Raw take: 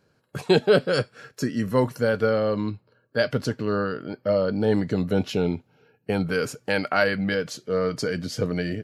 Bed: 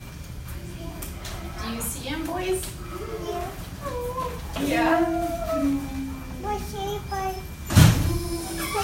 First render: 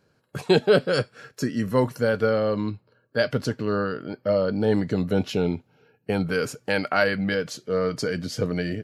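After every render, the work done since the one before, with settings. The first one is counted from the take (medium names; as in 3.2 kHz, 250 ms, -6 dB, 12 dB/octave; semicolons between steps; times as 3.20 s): no audible change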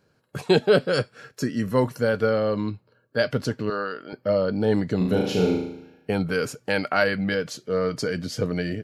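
3.70–4.13 s: frequency weighting A; 4.97–6.13 s: flutter echo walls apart 6.5 m, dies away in 0.77 s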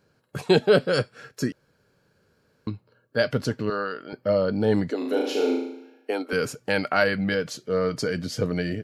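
1.52–2.67 s: room tone; 4.90–6.33 s: elliptic high-pass 260 Hz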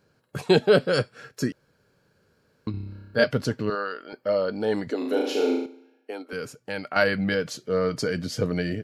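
2.71–3.24 s: flutter echo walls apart 5.2 m, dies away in 1.2 s; 3.75–4.87 s: peaking EQ 110 Hz -13.5 dB 2 oct; 5.66–6.96 s: gain -8 dB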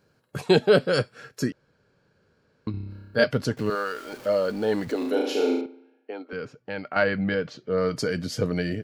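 1.50–2.90 s: distance through air 73 m; 3.57–5.10 s: jump at every zero crossing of -39 dBFS; 5.61–7.78 s: distance through air 210 m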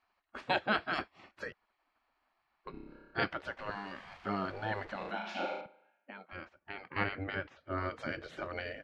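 spectral gate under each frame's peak -15 dB weak; low-pass 2.2 kHz 12 dB/octave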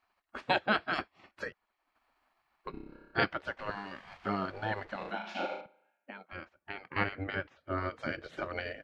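gain riding within 4 dB 2 s; transient shaper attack +2 dB, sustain -5 dB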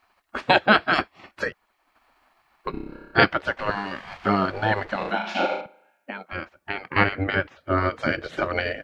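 trim +12 dB; peak limiter -2 dBFS, peak gain reduction 2.5 dB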